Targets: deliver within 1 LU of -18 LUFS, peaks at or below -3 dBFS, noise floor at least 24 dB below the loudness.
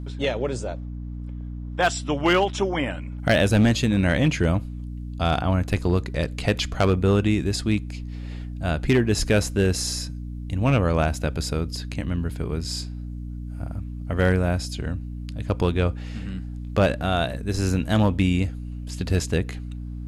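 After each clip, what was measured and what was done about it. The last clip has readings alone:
clipped samples 0.7%; clipping level -12.0 dBFS; hum 60 Hz; highest harmonic 300 Hz; hum level -30 dBFS; loudness -24.0 LUFS; peak level -12.0 dBFS; loudness target -18.0 LUFS
-> clip repair -12 dBFS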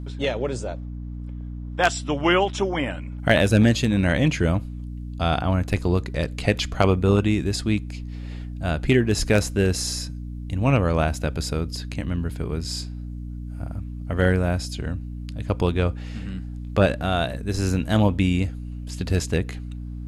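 clipped samples 0.0%; hum 60 Hz; highest harmonic 300 Hz; hum level -30 dBFS
-> de-hum 60 Hz, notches 5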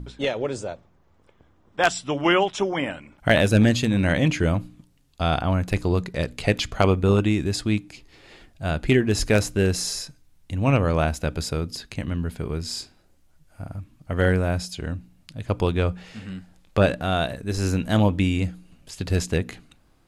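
hum not found; loudness -23.5 LUFS; peak level -3.5 dBFS; loudness target -18.0 LUFS
-> trim +5.5 dB; peak limiter -3 dBFS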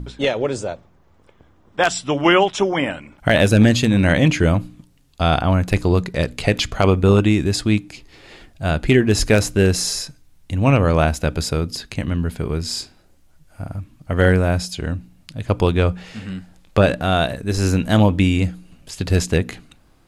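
loudness -18.5 LUFS; peak level -3.0 dBFS; noise floor -54 dBFS

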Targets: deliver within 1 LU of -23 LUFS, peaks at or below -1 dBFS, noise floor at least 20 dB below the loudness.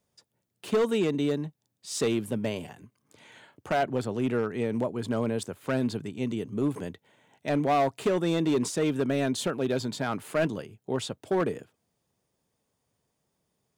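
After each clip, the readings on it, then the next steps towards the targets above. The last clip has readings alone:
clipped samples 1.7%; clipping level -19.5 dBFS; loudness -29.0 LUFS; peak level -19.5 dBFS; loudness target -23.0 LUFS
-> clip repair -19.5 dBFS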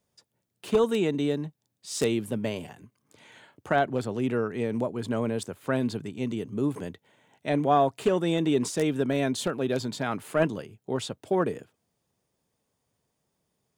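clipped samples 0.0%; loudness -28.0 LUFS; peak level -10.5 dBFS; loudness target -23.0 LUFS
-> trim +5 dB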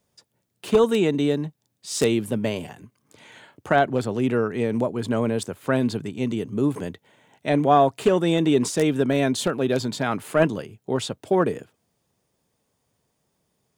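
loudness -23.0 LUFS; peak level -5.5 dBFS; noise floor -74 dBFS

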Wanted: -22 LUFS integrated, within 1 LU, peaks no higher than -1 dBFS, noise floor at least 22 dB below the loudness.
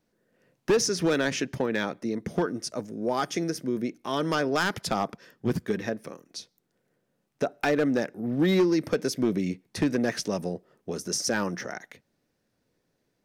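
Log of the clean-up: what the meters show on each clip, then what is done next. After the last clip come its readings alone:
clipped samples 0.7%; clipping level -17.0 dBFS; loudness -28.0 LUFS; peak level -17.0 dBFS; loudness target -22.0 LUFS
-> clip repair -17 dBFS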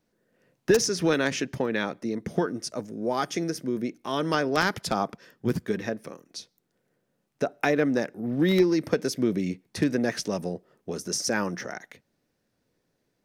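clipped samples 0.0%; loudness -27.5 LUFS; peak level -8.0 dBFS; loudness target -22.0 LUFS
-> trim +5.5 dB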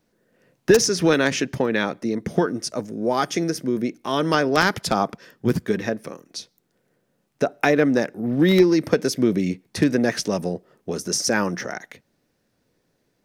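loudness -22.0 LUFS; peak level -2.5 dBFS; noise floor -70 dBFS

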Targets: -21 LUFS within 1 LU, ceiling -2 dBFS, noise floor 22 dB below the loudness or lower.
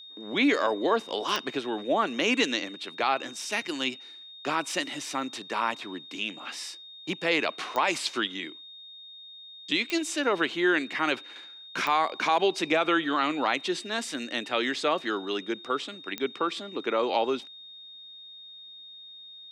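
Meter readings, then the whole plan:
clicks found 5; steady tone 3.7 kHz; tone level -44 dBFS; loudness -28.0 LUFS; peak level -12.5 dBFS; loudness target -21.0 LUFS
-> de-click; band-stop 3.7 kHz, Q 30; trim +7 dB

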